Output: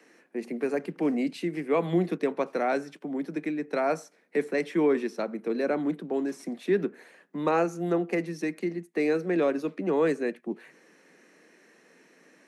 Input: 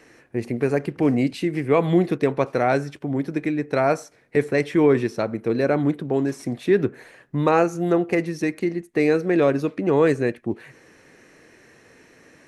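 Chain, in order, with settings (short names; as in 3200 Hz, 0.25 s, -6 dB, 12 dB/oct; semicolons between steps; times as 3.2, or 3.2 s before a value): steep high-pass 160 Hz 96 dB/oct; gain -6.5 dB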